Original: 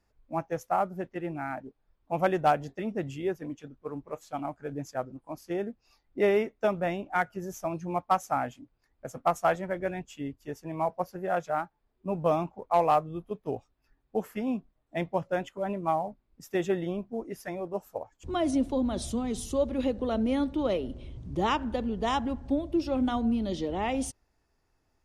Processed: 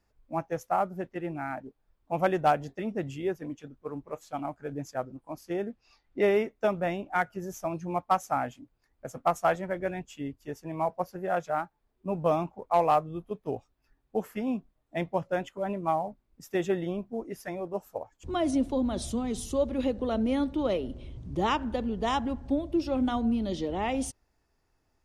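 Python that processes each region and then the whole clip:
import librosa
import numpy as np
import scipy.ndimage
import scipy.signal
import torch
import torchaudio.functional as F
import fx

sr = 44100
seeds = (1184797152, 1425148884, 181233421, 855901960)

y = fx.chain(x, sr, fx.lowpass(hz=7300.0, slope=12),
    fx.peak_eq(hz=2400.0, db=4.5, octaves=2.6), at=(5.7, 6.22))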